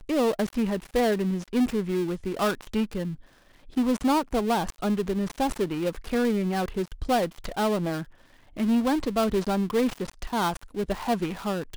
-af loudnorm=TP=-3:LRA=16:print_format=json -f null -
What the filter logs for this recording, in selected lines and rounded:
"input_i" : "-27.1",
"input_tp" : "-14.5",
"input_lra" : "0.9",
"input_thresh" : "-37.3",